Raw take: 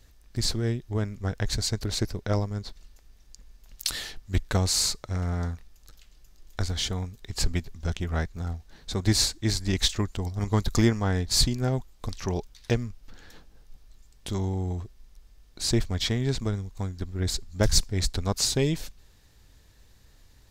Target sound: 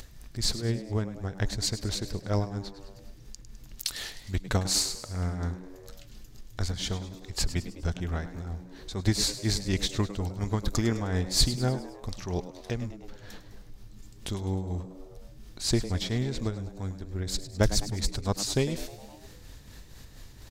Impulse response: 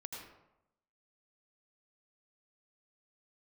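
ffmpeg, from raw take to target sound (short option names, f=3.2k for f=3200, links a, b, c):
-filter_complex "[0:a]tremolo=f=4.2:d=0.61,asplit=6[a][b][c][d][e][f];[b]adelay=103,afreqshift=96,volume=-13.5dB[g];[c]adelay=206,afreqshift=192,volume=-19.3dB[h];[d]adelay=309,afreqshift=288,volume=-25.2dB[i];[e]adelay=412,afreqshift=384,volume=-31dB[j];[f]adelay=515,afreqshift=480,volume=-36.9dB[k];[a][g][h][i][j][k]amix=inputs=6:normalize=0,acompressor=mode=upward:threshold=-35dB:ratio=2.5"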